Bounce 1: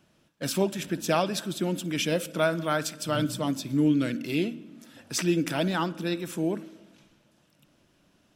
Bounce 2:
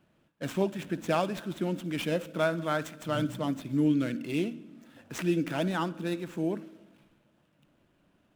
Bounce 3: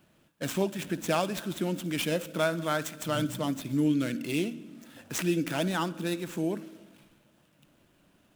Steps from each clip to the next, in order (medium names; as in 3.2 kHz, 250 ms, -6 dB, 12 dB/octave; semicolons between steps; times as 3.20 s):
median filter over 9 samples; trim -2.5 dB
treble shelf 4.1 kHz +10 dB; in parallel at -2.5 dB: compression, threshold -35 dBFS, peak gain reduction 13.5 dB; on the sum: trim -2 dB